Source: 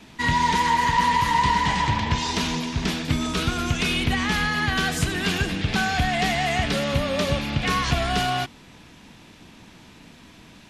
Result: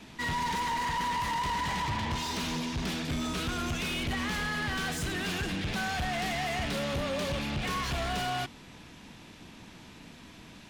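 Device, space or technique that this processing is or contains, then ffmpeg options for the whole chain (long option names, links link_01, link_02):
saturation between pre-emphasis and de-emphasis: -af "highshelf=frequency=2800:gain=8,asoftclip=type=tanh:threshold=-25.5dB,highshelf=frequency=2800:gain=-8,volume=-2dB"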